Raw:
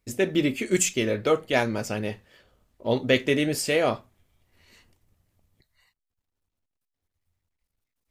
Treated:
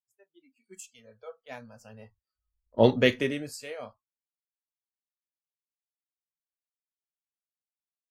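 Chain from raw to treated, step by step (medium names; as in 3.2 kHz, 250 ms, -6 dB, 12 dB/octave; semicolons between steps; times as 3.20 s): Doppler pass-by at 2.74 s, 10 m/s, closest 1.5 m; spectral noise reduction 28 dB; three bands expanded up and down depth 70%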